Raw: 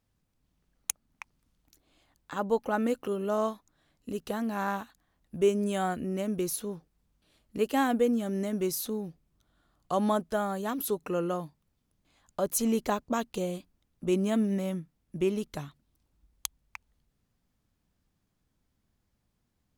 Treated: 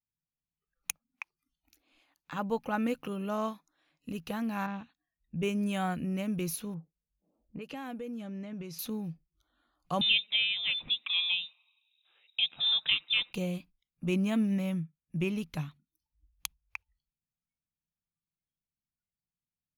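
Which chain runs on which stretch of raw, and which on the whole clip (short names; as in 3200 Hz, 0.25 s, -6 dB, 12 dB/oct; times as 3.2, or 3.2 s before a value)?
4.66–5.43 LPF 3200 Hz + bell 1200 Hz -9.5 dB 2.1 oct
6.74–8.79 low-pass opened by the level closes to 770 Hz, open at -22.5 dBFS + compressor 4:1, threshold -37 dBFS + bell 510 Hz +3 dB 0.81 oct
10.01–13.33 thin delay 90 ms, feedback 71%, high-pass 2400 Hz, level -21 dB + inverted band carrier 3800 Hz
whole clip: spectral noise reduction 23 dB; thirty-one-band EQ 160 Hz +10 dB, 400 Hz -8 dB, 630 Hz -4 dB, 2500 Hz +9 dB, 8000 Hz -10 dB; gain -2 dB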